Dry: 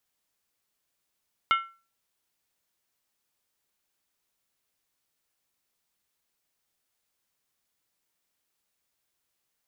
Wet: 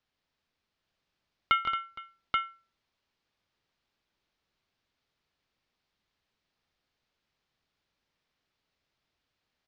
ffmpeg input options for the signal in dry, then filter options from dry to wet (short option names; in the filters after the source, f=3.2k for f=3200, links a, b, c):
-f lavfi -i "aevalsrc='0.141*pow(10,-3*t/0.34)*sin(2*PI*1350*t)+0.0794*pow(10,-3*t/0.269)*sin(2*PI*2151.9*t)+0.0447*pow(10,-3*t/0.233)*sin(2*PI*2883.6*t)+0.0251*pow(10,-3*t/0.224)*sin(2*PI*3099.6*t)+0.0141*pow(10,-3*t/0.209)*sin(2*PI*3581.6*t)':d=0.63:s=44100"
-filter_complex "[0:a]lowpass=f=4.8k:w=0.5412,lowpass=f=4.8k:w=1.3066,lowshelf=f=220:g=6.5,asplit=2[a][b];[b]aecho=0:1:141|164|224|464|831:0.224|0.398|0.266|0.106|0.668[c];[a][c]amix=inputs=2:normalize=0"